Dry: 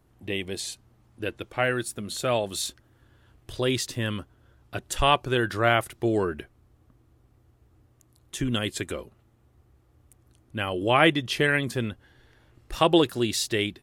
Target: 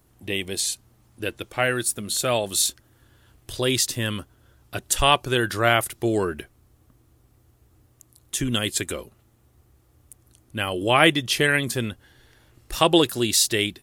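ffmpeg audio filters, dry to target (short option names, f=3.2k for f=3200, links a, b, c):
-af "highshelf=f=4.7k:g=12,volume=1.5dB"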